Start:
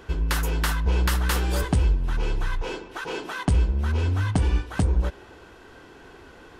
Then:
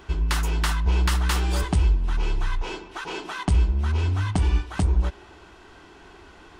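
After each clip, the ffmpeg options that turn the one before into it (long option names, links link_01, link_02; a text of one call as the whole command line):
ffmpeg -i in.wav -af "equalizer=frequency=125:width_type=o:width=0.33:gain=-10,equalizer=frequency=250:width_type=o:width=0.33:gain=-6,equalizer=frequency=500:width_type=o:width=0.33:gain=-11,equalizer=frequency=1600:width_type=o:width=0.33:gain=-4,equalizer=frequency=12500:width_type=o:width=0.33:gain=-12,volume=1.5dB" out.wav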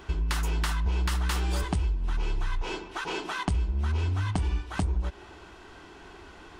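ffmpeg -i in.wav -af "acompressor=threshold=-25dB:ratio=4" out.wav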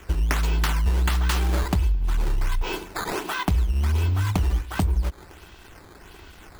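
ffmpeg -i in.wav -filter_complex "[0:a]acrossover=split=170|2200[link_01][link_02][link_03];[link_02]aeval=exprs='sgn(val(0))*max(abs(val(0))-0.00251,0)':channel_layout=same[link_04];[link_01][link_04][link_03]amix=inputs=3:normalize=0,acrusher=samples=9:mix=1:aa=0.000001:lfo=1:lforange=14.4:lforate=1.4,volume=5.5dB" out.wav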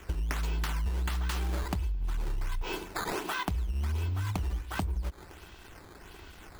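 ffmpeg -i in.wav -af "acompressor=threshold=-25dB:ratio=6,volume=-3.5dB" out.wav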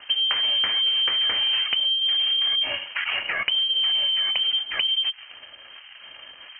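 ffmpeg -i in.wav -filter_complex "[0:a]asplit=2[link_01][link_02];[link_02]aeval=exprs='sgn(val(0))*max(abs(val(0))-0.00447,0)':channel_layout=same,volume=-6dB[link_03];[link_01][link_03]amix=inputs=2:normalize=0,lowpass=frequency=2700:width_type=q:width=0.5098,lowpass=frequency=2700:width_type=q:width=0.6013,lowpass=frequency=2700:width_type=q:width=0.9,lowpass=frequency=2700:width_type=q:width=2.563,afreqshift=-3200,volume=4.5dB" out.wav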